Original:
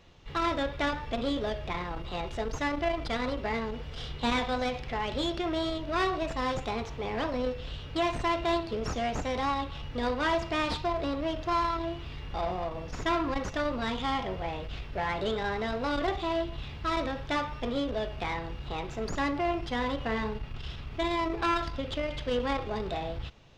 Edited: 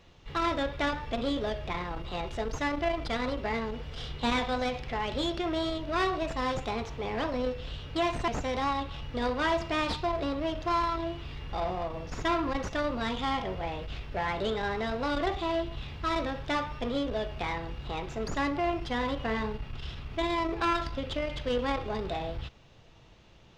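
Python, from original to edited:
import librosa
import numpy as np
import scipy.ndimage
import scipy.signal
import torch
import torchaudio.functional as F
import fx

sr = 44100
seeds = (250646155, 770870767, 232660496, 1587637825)

y = fx.edit(x, sr, fx.cut(start_s=8.28, length_s=0.81), tone=tone)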